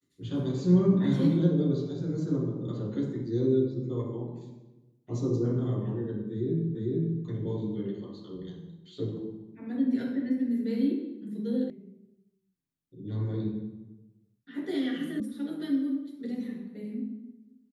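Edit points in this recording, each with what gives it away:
0:06.75: the same again, the last 0.45 s
0:11.70: cut off before it has died away
0:15.20: cut off before it has died away

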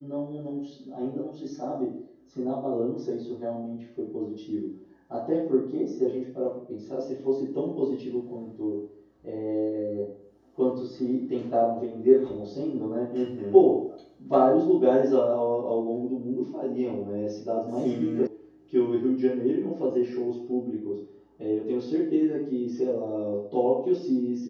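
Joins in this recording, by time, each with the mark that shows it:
0:18.27: cut off before it has died away

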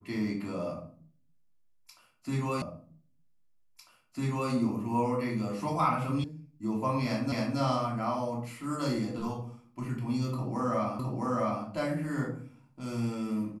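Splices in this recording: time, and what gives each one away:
0:02.62: the same again, the last 1.9 s
0:06.24: cut off before it has died away
0:07.32: the same again, the last 0.27 s
0:10.99: the same again, the last 0.66 s

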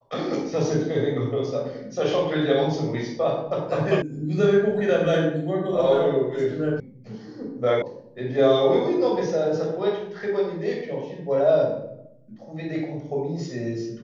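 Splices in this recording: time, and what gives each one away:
0:04.02: cut off before it has died away
0:06.80: cut off before it has died away
0:07.82: cut off before it has died away

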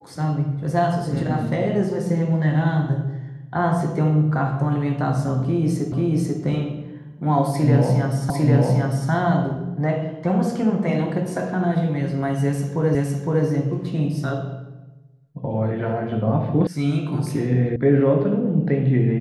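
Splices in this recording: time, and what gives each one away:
0:05.92: the same again, the last 0.49 s
0:08.30: the same again, the last 0.8 s
0:12.95: the same again, the last 0.51 s
0:16.67: cut off before it has died away
0:17.76: cut off before it has died away

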